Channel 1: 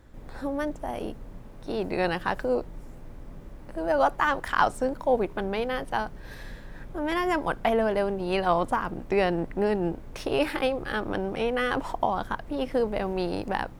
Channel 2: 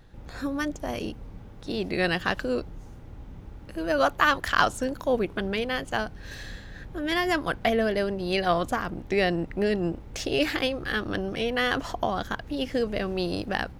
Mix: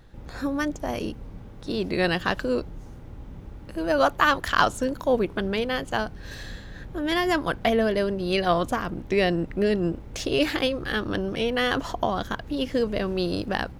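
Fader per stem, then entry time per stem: -10.5 dB, +1.0 dB; 0.00 s, 0.00 s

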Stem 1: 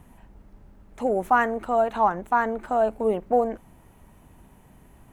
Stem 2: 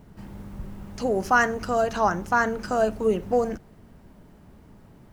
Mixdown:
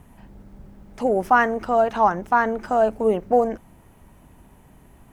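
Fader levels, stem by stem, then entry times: +1.5 dB, -10.5 dB; 0.00 s, 0.00 s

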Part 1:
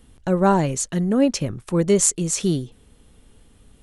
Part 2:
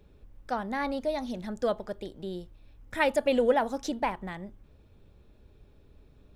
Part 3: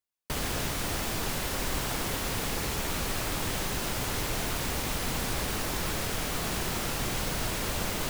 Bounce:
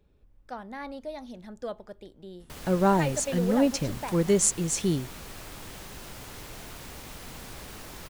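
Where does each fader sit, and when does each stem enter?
-5.0 dB, -7.5 dB, -11.5 dB; 2.40 s, 0.00 s, 2.20 s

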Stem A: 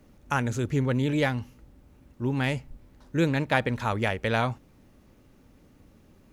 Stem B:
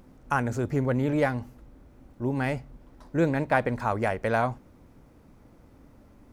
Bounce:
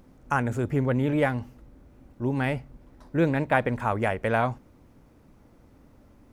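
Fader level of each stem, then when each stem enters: -10.5 dB, -1.5 dB; 0.00 s, 0.00 s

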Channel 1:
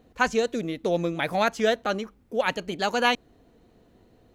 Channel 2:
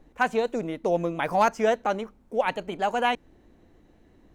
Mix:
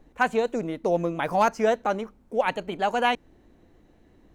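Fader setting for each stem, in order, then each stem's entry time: -17.5 dB, 0.0 dB; 0.00 s, 0.00 s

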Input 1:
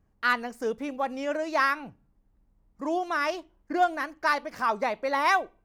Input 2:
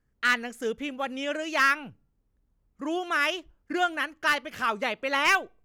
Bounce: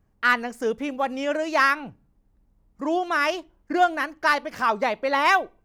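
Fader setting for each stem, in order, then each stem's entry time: +2.0 dB, -7.0 dB; 0.00 s, 0.00 s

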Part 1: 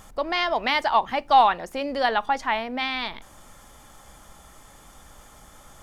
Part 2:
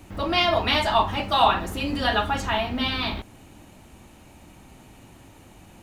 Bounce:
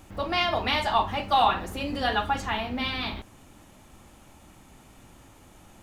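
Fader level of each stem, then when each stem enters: -9.0 dB, -5.0 dB; 0.00 s, 0.00 s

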